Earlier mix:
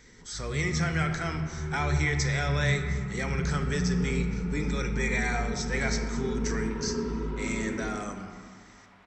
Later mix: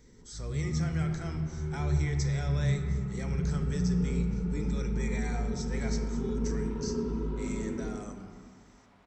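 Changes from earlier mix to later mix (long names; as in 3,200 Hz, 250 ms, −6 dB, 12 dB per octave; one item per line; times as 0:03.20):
speech −5.0 dB
master: add parametric band 1,900 Hz −8.5 dB 2.4 octaves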